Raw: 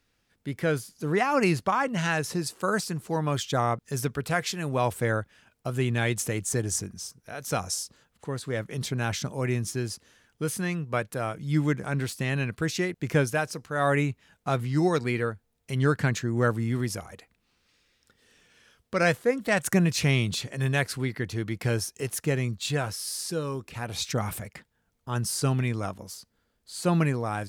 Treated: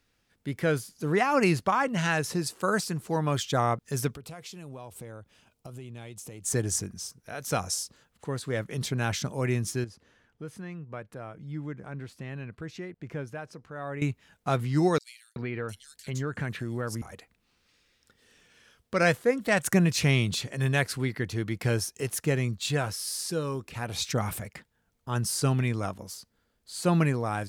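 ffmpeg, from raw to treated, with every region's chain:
ffmpeg -i in.wav -filter_complex "[0:a]asettb=1/sr,asplit=3[link_01][link_02][link_03];[link_01]atrim=end=4.114[link_04];[link_02]atrim=start=4.11:end=6.44,asetpts=PTS-STARTPTS,afade=type=in:duration=0.004:curve=qsin,afade=type=out:start_time=2.326:duration=0.004:curve=qsin,equalizer=frequency=1700:width=2.3:gain=-9.5,acompressor=threshold=-40dB:ratio=6:attack=3.2:release=140:knee=1:detection=peak[link_05];[link_03]atrim=start=6.436[link_06];[link_04][link_05]acrossfade=duration=0.004:curve1=hsin:curve2=qsin[link_07];[link_07][link_06]acrossfade=duration=0.004:curve1=qsin:curve2=hsin,asettb=1/sr,asplit=3[link_08][link_09][link_10];[link_08]atrim=end=9.844[link_11];[link_09]atrim=start=9.84:end=14.02,asetpts=PTS-STARTPTS,afade=type=in:duration=0.004:curve=qsin,afade=type=out:start_time=4.176:duration=0.004:curve=qsin,lowpass=frequency=1700:poles=1,acompressor=threshold=-53dB:ratio=1.5:attack=3.2:release=140:knee=1:detection=peak[link_12];[link_10]atrim=start=14.016[link_13];[link_11][link_12]acrossfade=duration=0.004:curve1=hsin:curve2=qsin[link_14];[link_14][link_13]acrossfade=duration=0.004:curve1=qsin:curve2=hsin,asettb=1/sr,asplit=3[link_15][link_16][link_17];[link_15]atrim=end=14.984[link_18];[link_16]atrim=start=14.98:end=17.02,asetpts=PTS-STARTPTS,afade=type=in:duration=0.004:curve=qsin,afade=type=out:start_time=2.036:duration=0.004:curve=qsin,acrossover=split=3700[link_19][link_20];[link_19]adelay=380[link_21];[link_21][link_20]amix=inputs=2:normalize=0,atrim=end_sample=89964,acompressor=threshold=-30dB:ratio=3:attack=3.2:release=140:knee=1:detection=peak[link_22];[link_17]atrim=start=17.016[link_23];[link_18][link_22]acrossfade=duration=0.004:curve1=hsin:curve2=qsin[link_24];[link_24][link_23]acrossfade=duration=0.004:curve1=qsin:curve2=hsin" out.wav

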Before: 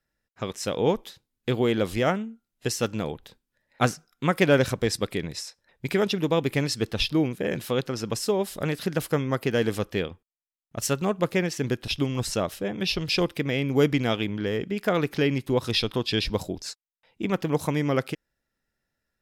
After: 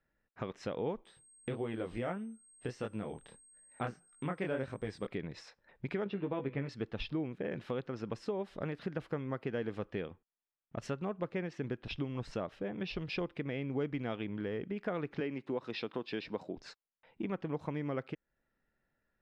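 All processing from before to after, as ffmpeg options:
ffmpeg -i in.wav -filter_complex "[0:a]asettb=1/sr,asplit=3[link_01][link_02][link_03];[link_01]atrim=end=1.054[link_04];[link_02]atrim=start=1.05:end=5.07,asetpts=PTS-STARTPTS,afade=type=in:duration=0.004:curve=qsin,afade=type=out:start_time=4.016:duration=0.004:curve=qsin,flanger=delay=18:depth=7.8:speed=1.6,aeval=exprs='val(0)+0.0178*sin(2*PI*8400*n/s)':channel_layout=same[link_05];[link_03]atrim=start=5.066[link_06];[link_04][link_05]acrossfade=duration=0.004:curve1=hsin:curve2=qsin[link_07];[link_07][link_06]acrossfade=duration=0.004:curve1=qsin:curve2=hsin,asettb=1/sr,asplit=3[link_08][link_09][link_10];[link_08]atrim=end=6.044[link_11];[link_09]atrim=start=6.04:end=6.69,asetpts=PTS-STARTPTS,afade=type=in:duration=0.004:curve=qsin,afade=type=out:start_time=0.646:duration=0.004:curve=qsin,lowpass=2900,asplit=2[link_12][link_13];[link_13]adelay=15,volume=-6dB[link_14];[link_12][link_14]amix=inputs=2:normalize=0,atrim=end_sample=28665,bandreject=frequency=123.7:width_type=h:width=4,bandreject=frequency=247.4:width_type=h:width=4,bandreject=frequency=371.1:width_type=h:width=4,bandreject=frequency=494.8:width_type=h:width=4,bandreject=frequency=618.5:width_type=h:width=4,bandreject=frequency=742.2:width_type=h:width=4,bandreject=frequency=865.9:width_type=h:width=4,bandreject=frequency=989.6:width_type=h:width=4,bandreject=frequency=1113.3:width_type=h:width=4,bandreject=frequency=1237:width_type=h:width=4,bandreject=frequency=1360.7:width_type=h:width=4,bandreject=frequency=1484.4:width_type=h:width=4,bandreject=frequency=1608.1:width_type=h:width=4,bandreject=frequency=1731.8:width_type=h:width=4,bandreject=frequency=1855.5:width_type=h:width=4,bandreject=frequency=1979.2:width_type=h:width=4,bandreject=frequency=2102.9:width_type=h:width=4,bandreject=frequency=2226.6:width_type=h:width=4,bandreject=frequency=2350.3:width_type=h:width=4,bandreject=frequency=2474:width_type=h:width=4,bandreject=frequency=2597.7:width_type=h:width=4,bandreject=frequency=2721.4:width_type=h:width=4,bandreject=frequency=2845.1:width_type=h:width=4,bandreject=frequency=2968.8:width_type=h:width=4,bandreject=frequency=3092.5:width_type=h:width=4,bandreject=frequency=3216.2:width_type=h:width=4,bandreject=frequency=3339.9:width_type=h:width=4,bandreject=frequency=3463.6:width_type=h:width=4,bandreject=frequency=3587.3:width_type=h:width=4,bandreject=frequency=3711:width_type=h:width=4,bandreject=frequency=3834.7:width_type=h:width=4,bandreject=frequency=3958.4:width_type=h:width=4,bandreject=frequency=4082.1:width_type=h:width=4,bandreject=frequency=4205.8:width_type=h:width=4,bandreject=frequency=4329.5:width_type=h:width=4,bandreject=frequency=4453.2:width_type=h:width=4,bandreject=frequency=4576.9:width_type=h:width=4[link_15];[link_10]atrim=start=6.686[link_16];[link_11][link_15]acrossfade=duration=0.004:curve1=hsin:curve2=qsin[link_17];[link_17][link_16]acrossfade=duration=0.004:curve1=qsin:curve2=hsin,asettb=1/sr,asplit=3[link_18][link_19][link_20];[link_18]atrim=end=15.204[link_21];[link_19]atrim=start=15.2:end=16.57,asetpts=PTS-STARTPTS,afade=type=in:duration=0.004:curve=qsin,afade=type=out:start_time=1.366:duration=0.004:curve=qsin,highpass=210,bandreject=frequency=3300:width=19[link_22];[link_20]atrim=start=16.566[link_23];[link_21][link_22]acrossfade=duration=0.004:curve1=hsin:curve2=qsin[link_24];[link_24][link_23]acrossfade=duration=0.004:curve1=qsin:curve2=hsin,lowpass=2200,equalizer=frequency=79:width_type=o:width=0.83:gain=-5,acompressor=threshold=-41dB:ratio=2.5,volume=1dB" out.wav

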